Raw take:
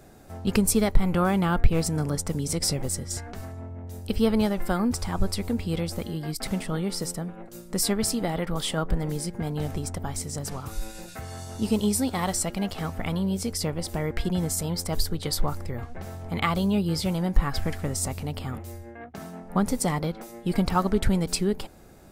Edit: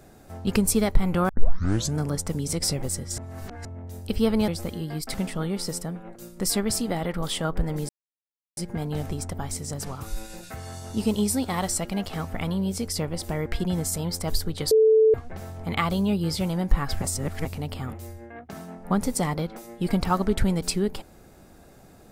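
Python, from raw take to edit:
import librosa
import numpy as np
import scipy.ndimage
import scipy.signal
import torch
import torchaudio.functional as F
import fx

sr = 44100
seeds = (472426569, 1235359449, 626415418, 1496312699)

y = fx.edit(x, sr, fx.tape_start(start_s=1.29, length_s=0.69),
    fx.reverse_span(start_s=3.18, length_s=0.47),
    fx.cut(start_s=4.48, length_s=1.33),
    fx.insert_silence(at_s=9.22, length_s=0.68),
    fx.bleep(start_s=15.36, length_s=0.43, hz=439.0, db=-13.5),
    fx.reverse_span(start_s=17.67, length_s=0.43), tone=tone)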